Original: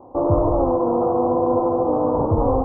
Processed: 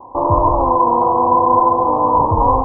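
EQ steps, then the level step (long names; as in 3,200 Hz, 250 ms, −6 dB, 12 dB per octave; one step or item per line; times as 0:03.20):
low-pass with resonance 1,000 Hz, resonance Q 12
low-shelf EQ 120 Hz +7.5 dB
−3.0 dB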